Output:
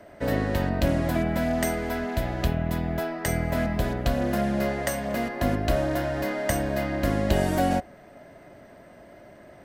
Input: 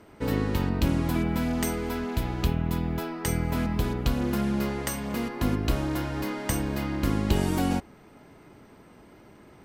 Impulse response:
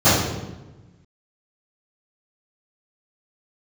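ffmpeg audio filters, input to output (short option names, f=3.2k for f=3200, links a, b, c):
-filter_complex "[0:a]superequalizer=8b=3.98:11b=2,acrossover=split=400|680|3900[a][b][c][d];[d]acrusher=bits=6:mode=log:mix=0:aa=0.000001[e];[a][b][c][e]amix=inputs=4:normalize=0"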